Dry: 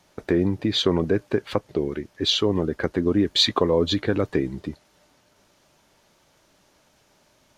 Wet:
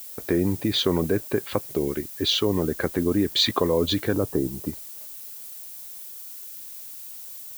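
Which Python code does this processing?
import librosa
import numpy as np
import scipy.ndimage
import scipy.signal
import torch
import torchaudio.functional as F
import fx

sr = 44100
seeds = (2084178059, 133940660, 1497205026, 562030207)

p1 = fx.lowpass(x, sr, hz=1200.0, slope=24, at=(4.13, 4.67))
p2 = fx.level_steps(p1, sr, step_db=15)
p3 = p1 + (p2 * 10.0 ** (2.5 / 20.0))
p4 = fx.dmg_noise_colour(p3, sr, seeds[0], colour='violet', level_db=-35.0)
y = p4 * 10.0 ** (-4.5 / 20.0)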